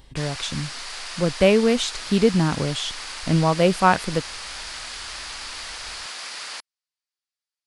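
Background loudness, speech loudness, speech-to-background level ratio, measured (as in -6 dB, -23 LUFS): -32.5 LUFS, -21.5 LUFS, 11.0 dB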